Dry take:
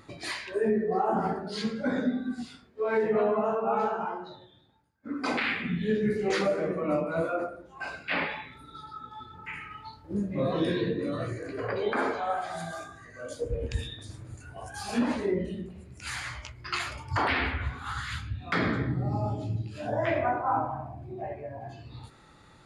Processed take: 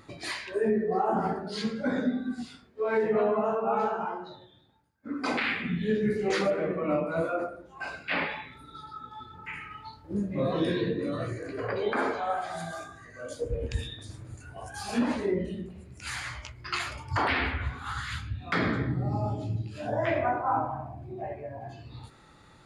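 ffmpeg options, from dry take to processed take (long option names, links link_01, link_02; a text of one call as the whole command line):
ffmpeg -i in.wav -filter_complex "[0:a]asettb=1/sr,asplit=3[link_01][link_02][link_03];[link_01]atrim=end=6.504[link_04];[link_02]atrim=start=6.5:end=7.06,asetpts=PTS-STARTPTS,afade=type=in:duration=0.004:curve=qsin,afade=type=out:start_time=0.556:duration=0.004:curve=qsin,highshelf=frequency=4300:width_type=q:width=1.5:gain=-10[link_05];[link_03]atrim=start=7.056[link_06];[link_04][link_05]acrossfade=duration=0.004:curve1=hsin:curve2=qsin[link_07];[link_07][link_06]acrossfade=duration=0.004:curve1=qsin:curve2=hsin" out.wav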